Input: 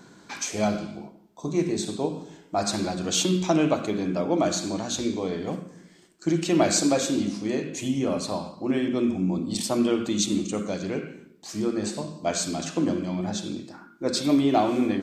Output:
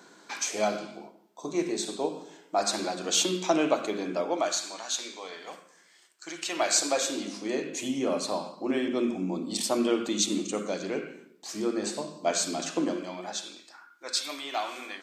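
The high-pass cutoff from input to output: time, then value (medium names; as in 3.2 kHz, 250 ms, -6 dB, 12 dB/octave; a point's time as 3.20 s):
4.15 s 370 Hz
4.64 s 990 Hz
6.37 s 990 Hz
7.68 s 300 Hz
12.78 s 300 Hz
13.71 s 1.2 kHz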